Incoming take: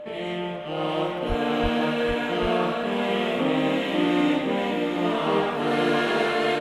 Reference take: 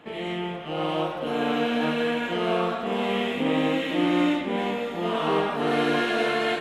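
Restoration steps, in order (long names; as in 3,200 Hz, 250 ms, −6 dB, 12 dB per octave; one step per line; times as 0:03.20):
notch filter 600 Hz, Q 30
0:01.28–0:01.40: high-pass filter 140 Hz 24 dB per octave
0:01.62–0:01.74: high-pass filter 140 Hz 24 dB per octave
echo removal 791 ms −6 dB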